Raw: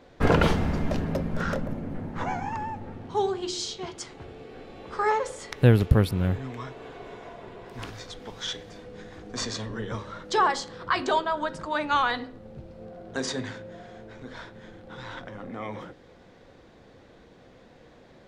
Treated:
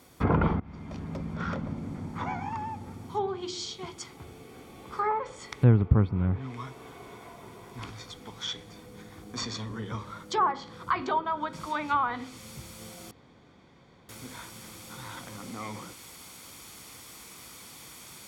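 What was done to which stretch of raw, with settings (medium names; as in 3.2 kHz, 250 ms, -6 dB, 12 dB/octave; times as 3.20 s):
0.60–1.60 s: fade in, from -23 dB
11.53 s: noise floor step -57 dB -43 dB
13.11–14.09 s: room tone
whole clip: low-pass that closes with the level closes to 1.4 kHz, closed at -19 dBFS; high-pass 59 Hz; comb 0.9 ms, depth 44%; trim -3.5 dB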